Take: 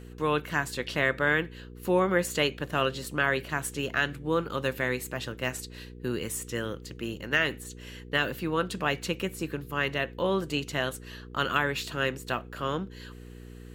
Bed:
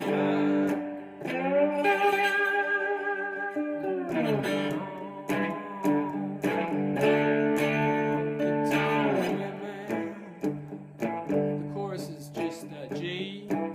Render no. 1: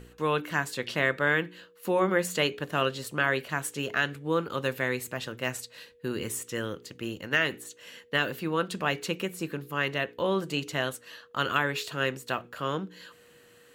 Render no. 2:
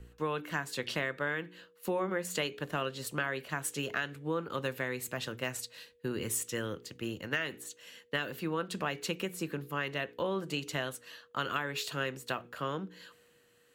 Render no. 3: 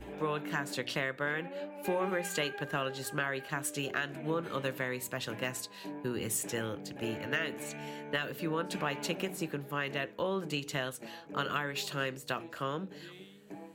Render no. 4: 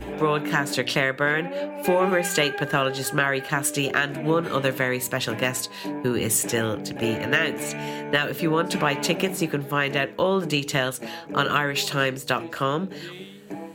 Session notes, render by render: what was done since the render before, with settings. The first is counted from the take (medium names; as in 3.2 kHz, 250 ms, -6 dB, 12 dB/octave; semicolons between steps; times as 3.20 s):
de-hum 60 Hz, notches 7
compression 5:1, threshold -30 dBFS, peak gain reduction 10 dB; three bands expanded up and down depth 40%
add bed -17.5 dB
trim +11.5 dB